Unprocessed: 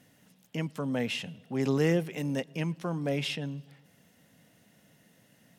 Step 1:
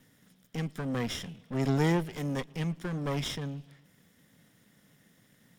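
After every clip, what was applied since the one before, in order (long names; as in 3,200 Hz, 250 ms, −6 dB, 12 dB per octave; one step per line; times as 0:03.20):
lower of the sound and its delayed copy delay 0.57 ms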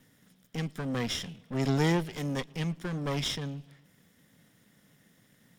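dynamic equaliser 4,400 Hz, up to +5 dB, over −51 dBFS, Q 0.8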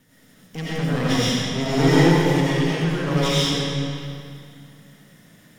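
comb and all-pass reverb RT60 2.4 s, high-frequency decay 0.85×, pre-delay 50 ms, DRR −9.5 dB
level +2.5 dB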